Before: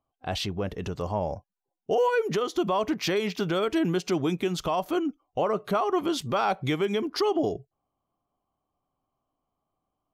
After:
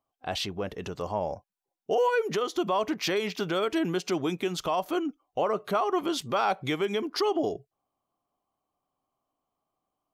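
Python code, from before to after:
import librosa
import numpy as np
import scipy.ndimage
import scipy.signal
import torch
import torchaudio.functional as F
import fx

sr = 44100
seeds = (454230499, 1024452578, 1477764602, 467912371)

y = fx.low_shelf(x, sr, hz=180.0, db=-10.0)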